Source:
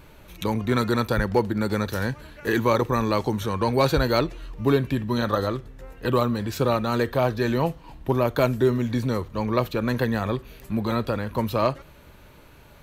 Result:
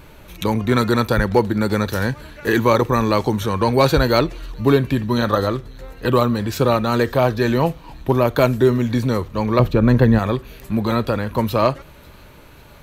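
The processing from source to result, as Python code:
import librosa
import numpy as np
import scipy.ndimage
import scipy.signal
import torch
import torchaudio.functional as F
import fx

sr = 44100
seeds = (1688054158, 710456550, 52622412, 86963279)

y = fx.tilt_eq(x, sr, slope=-2.5, at=(9.59, 10.19))
y = fx.echo_wet_highpass(y, sr, ms=545, feedback_pct=58, hz=2700.0, wet_db=-23.0)
y = y * 10.0 ** (5.5 / 20.0)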